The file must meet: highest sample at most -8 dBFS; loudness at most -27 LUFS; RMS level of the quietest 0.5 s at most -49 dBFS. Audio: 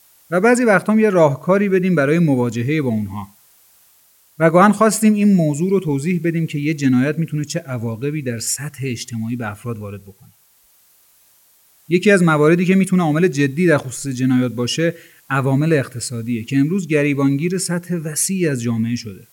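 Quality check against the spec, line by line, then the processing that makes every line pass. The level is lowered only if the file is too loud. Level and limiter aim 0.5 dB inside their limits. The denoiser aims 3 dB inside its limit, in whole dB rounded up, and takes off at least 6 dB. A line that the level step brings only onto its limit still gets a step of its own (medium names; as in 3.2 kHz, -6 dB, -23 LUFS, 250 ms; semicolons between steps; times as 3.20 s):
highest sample -2.0 dBFS: fail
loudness -17.0 LUFS: fail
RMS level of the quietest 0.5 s -55 dBFS: pass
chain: trim -10.5 dB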